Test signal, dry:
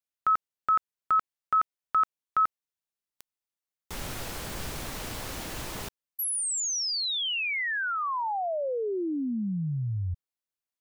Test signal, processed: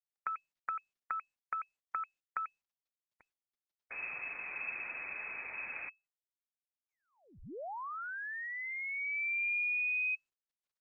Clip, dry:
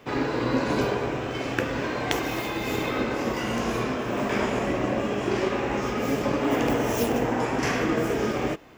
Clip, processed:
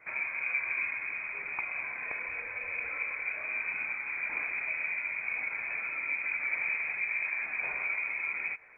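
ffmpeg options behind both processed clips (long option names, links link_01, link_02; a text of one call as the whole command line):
ffmpeg -i in.wav -filter_complex "[0:a]acrossover=split=280[link_01][link_02];[link_02]acompressor=threshold=-45dB:ratio=2:attack=37:release=125:knee=2.83:detection=peak[link_03];[link_01][link_03]amix=inputs=2:normalize=0,lowpass=frequency=2200:width_type=q:width=0.5098,lowpass=frequency=2200:width_type=q:width=0.6013,lowpass=frequency=2200:width_type=q:width=0.9,lowpass=frequency=2200:width_type=q:width=2.563,afreqshift=-2600,volume=-3.5dB" -ar 48000 -c:a libopus -b:a 20k out.opus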